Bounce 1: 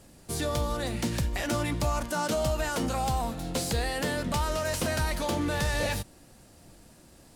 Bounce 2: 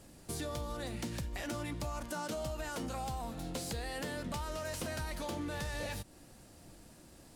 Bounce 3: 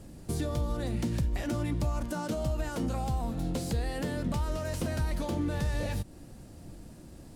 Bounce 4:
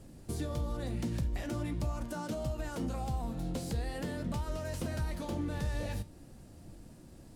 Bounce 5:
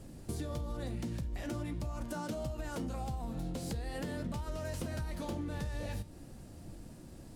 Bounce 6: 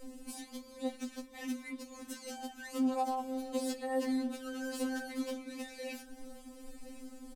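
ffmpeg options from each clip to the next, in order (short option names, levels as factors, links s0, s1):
-af "equalizer=f=310:t=o:w=0.21:g=2.5,acompressor=threshold=0.0158:ratio=3,volume=0.75"
-af "lowshelf=f=460:g=11.5"
-af "flanger=delay=7.6:depth=9.6:regen=-74:speed=0.43:shape=sinusoidal"
-af "acompressor=threshold=0.0141:ratio=6,volume=1.33"
-af "aecho=1:1:1070:0.112,afftfilt=real='re*3.46*eq(mod(b,12),0)':imag='im*3.46*eq(mod(b,12),0)':win_size=2048:overlap=0.75,volume=1.78"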